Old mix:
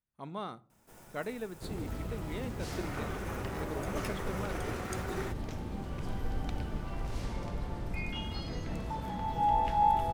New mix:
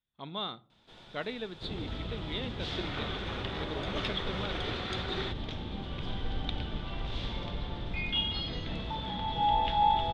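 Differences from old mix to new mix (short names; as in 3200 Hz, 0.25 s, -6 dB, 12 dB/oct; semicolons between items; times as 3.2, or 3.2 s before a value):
first sound: add bell 4300 Hz +6.5 dB 0.32 oct; master: add synth low-pass 3500 Hz, resonance Q 8.2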